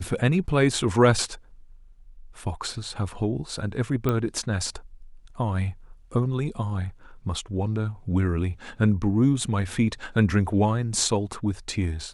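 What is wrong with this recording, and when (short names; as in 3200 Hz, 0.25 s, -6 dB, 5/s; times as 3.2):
4.09 pop -12 dBFS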